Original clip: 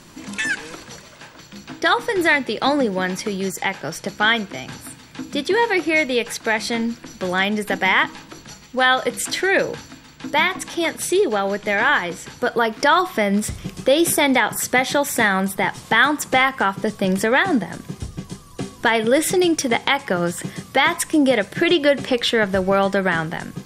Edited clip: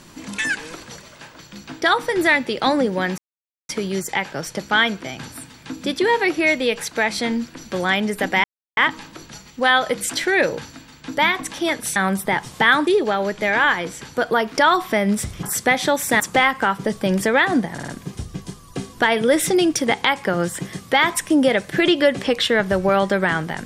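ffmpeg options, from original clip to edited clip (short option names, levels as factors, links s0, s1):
-filter_complex "[0:a]asplit=10[s0][s1][s2][s3][s4][s5][s6][s7][s8][s9];[s0]atrim=end=3.18,asetpts=PTS-STARTPTS,afade=t=out:st=3.176:d=0.004:c=hsin,apad=pad_dur=0.51[s10];[s1]atrim=start=3.18:end=7.93,asetpts=PTS-STARTPTS,afade=t=in:d=0.004:c=hsin,afade=t=out:st=4.746:d=0.004:c=hsin,apad=pad_dur=0.33[s11];[s2]atrim=start=7.93:end=11.122,asetpts=PTS-STARTPTS,afade=t=in:d=0.004:c=hsin[s12];[s3]atrim=start=15.268:end=16.182[s13];[s4]atrim=start=11.118:end=13.682[s14];[s5]atrim=start=14.498:end=15.272[s15];[s6]atrim=start=16.178:end=17.762[s16];[s7]atrim=start=17.708:end=17.762[s17];[s8]atrim=start=17.708:end=17.762[s18];[s9]atrim=start=17.708[s19];[s10][s11][s12]concat=n=3:v=0:a=1[s20];[s20][s13]acrossfade=d=0.004:c1=hsin:c2=hsin[s21];[s21][s14]acrossfade=d=0.004:c1=hsin:c2=hsin[s22];[s22][s15]acrossfade=d=0.004:c1=hsin:c2=hsin[s23];[s23][s16]acrossfade=d=0.004:c1=hsin:c2=hsin[s24];[s24][s17]acrossfade=d=0.004:c1=hsin:c2=hsin[s25];[s25][s18]acrossfade=d=0.004:c1=hsin:c2=hsin[s26];[s26][s19]acrossfade=d=0.004:c1=hsin:c2=hsin"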